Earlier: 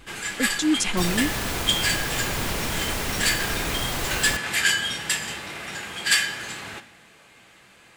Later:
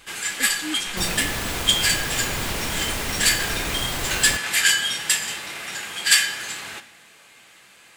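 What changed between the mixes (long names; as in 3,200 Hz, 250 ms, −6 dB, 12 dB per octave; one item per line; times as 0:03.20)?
speech −10.5 dB
first sound: add spectral tilt +2 dB per octave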